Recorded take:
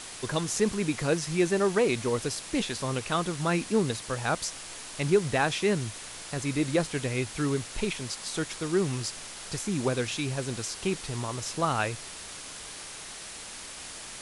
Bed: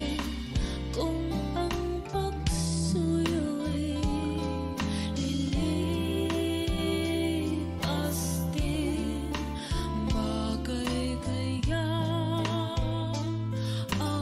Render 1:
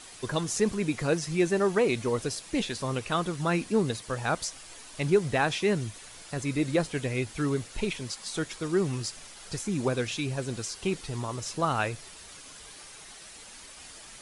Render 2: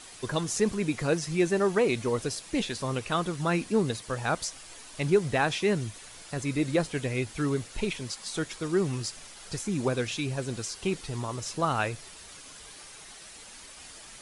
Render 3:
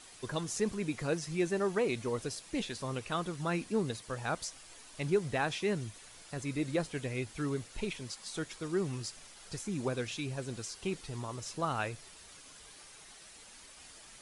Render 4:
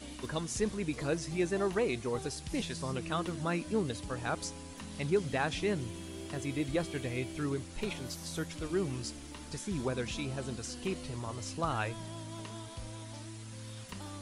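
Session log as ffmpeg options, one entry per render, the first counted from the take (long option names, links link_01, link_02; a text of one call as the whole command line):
ffmpeg -i in.wav -af "afftdn=noise_reduction=8:noise_floor=-42" out.wav
ffmpeg -i in.wav -af anull out.wav
ffmpeg -i in.wav -af "volume=-6.5dB" out.wav
ffmpeg -i in.wav -i bed.wav -filter_complex "[1:a]volume=-15dB[link_01];[0:a][link_01]amix=inputs=2:normalize=0" out.wav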